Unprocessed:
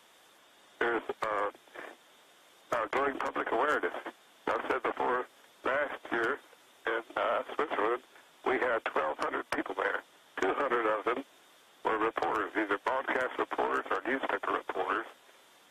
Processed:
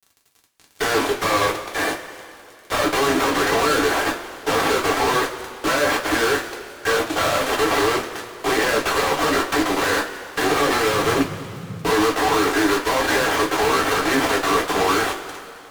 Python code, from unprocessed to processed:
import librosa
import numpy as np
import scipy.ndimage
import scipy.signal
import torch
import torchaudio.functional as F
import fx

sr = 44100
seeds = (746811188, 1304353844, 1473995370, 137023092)

y = fx.fuzz(x, sr, gain_db=54.0, gate_db=-51.0)
y = fx.rev_double_slope(y, sr, seeds[0], early_s=0.22, late_s=2.8, knee_db=-19, drr_db=-1.5)
y = fx.dmg_noise_band(y, sr, seeds[1], low_hz=96.0, high_hz=190.0, level_db=-25.0, at=(10.92, 11.89), fade=0.02)
y = y * 10.0 ** (-8.5 / 20.0)